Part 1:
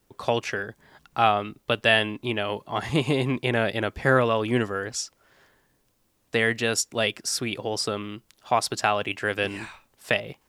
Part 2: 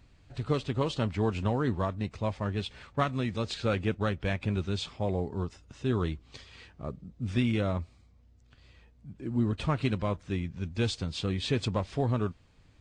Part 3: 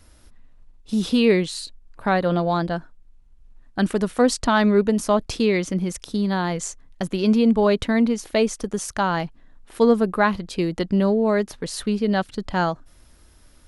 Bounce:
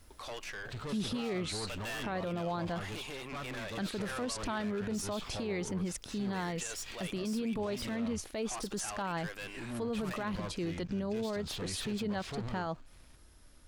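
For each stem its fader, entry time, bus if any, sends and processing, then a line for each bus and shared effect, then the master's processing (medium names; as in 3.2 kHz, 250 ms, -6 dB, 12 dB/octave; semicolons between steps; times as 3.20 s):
+2.0 dB, 0.00 s, bus A, no send, high-pass 940 Hz 6 dB/octave
+1.5 dB, 0.35 s, bus A, no send, bass shelf 370 Hz -8.5 dB; peak limiter -24.5 dBFS, peak gain reduction 9 dB; waveshaping leveller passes 2
-6.5 dB, 0.00 s, no bus, no send, peak limiter -15 dBFS, peak gain reduction 9.5 dB
bus A: 0.0 dB, valve stage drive 29 dB, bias 0.45; peak limiter -35.5 dBFS, peak gain reduction 10 dB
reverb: none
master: peak limiter -27.5 dBFS, peak gain reduction 7.5 dB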